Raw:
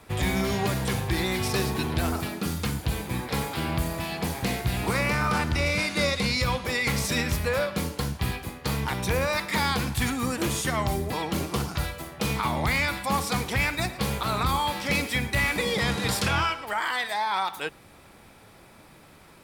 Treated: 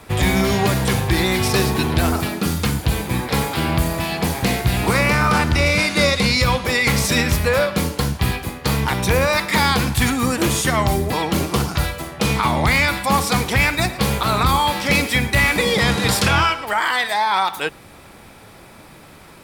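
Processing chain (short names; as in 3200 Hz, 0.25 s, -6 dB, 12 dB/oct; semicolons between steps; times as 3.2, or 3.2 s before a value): 12–12.72 bell 15000 Hz -12.5 dB 0.25 oct; gain +8.5 dB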